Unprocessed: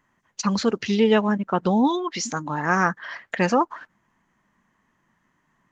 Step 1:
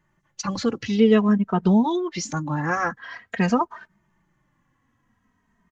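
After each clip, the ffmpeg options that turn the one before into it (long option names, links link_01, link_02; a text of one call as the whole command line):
ffmpeg -i in.wav -filter_complex "[0:a]lowshelf=frequency=200:gain=11,asplit=2[link_01][link_02];[link_02]adelay=2.9,afreqshift=-0.49[link_03];[link_01][link_03]amix=inputs=2:normalize=1" out.wav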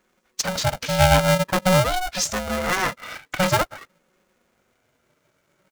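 ffmpeg -i in.wav -af "highshelf=frequency=3600:gain=11,aeval=exprs='val(0)*sgn(sin(2*PI*370*n/s))':channel_layout=same" out.wav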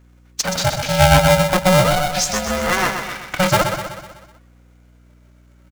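ffmpeg -i in.wav -af "aecho=1:1:125|250|375|500|625|750:0.447|0.232|0.121|0.0628|0.0327|0.017,aeval=exprs='val(0)+0.00251*(sin(2*PI*60*n/s)+sin(2*PI*2*60*n/s)/2+sin(2*PI*3*60*n/s)/3+sin(2*PI*4*60*n/s)/4+sin(2*PI*5*60*n/s)/5)':channel_layout=same,volume=3.5dB" out.wav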